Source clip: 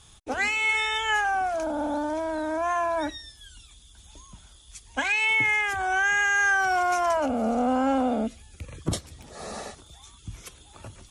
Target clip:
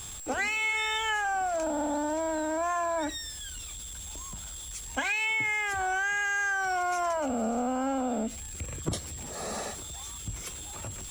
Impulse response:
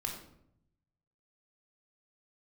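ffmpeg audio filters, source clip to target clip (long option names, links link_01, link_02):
-af "aeval=exprs='val(0)+0.5*0.01*sgn(val(0))':channel_layout=same,aeval=exprs='val(0)+0.01*sin(2*PI*7600*n/s)':channel_layout=same,acompressor=threshold=-25dB:ratio=6,volume=-1dB"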